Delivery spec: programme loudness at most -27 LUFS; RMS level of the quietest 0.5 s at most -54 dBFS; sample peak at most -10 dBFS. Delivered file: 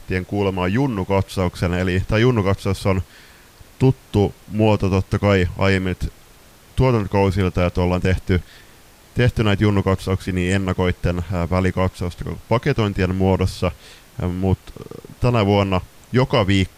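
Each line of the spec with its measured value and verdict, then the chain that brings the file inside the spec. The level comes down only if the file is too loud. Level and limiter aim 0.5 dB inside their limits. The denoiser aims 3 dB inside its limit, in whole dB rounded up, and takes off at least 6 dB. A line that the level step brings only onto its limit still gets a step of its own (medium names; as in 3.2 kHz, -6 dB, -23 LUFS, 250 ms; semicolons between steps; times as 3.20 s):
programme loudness -20.0 LUFS: fail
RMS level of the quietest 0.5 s -47 dBFS: fail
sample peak -3.5 dBFS: fail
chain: trim -7.5 dB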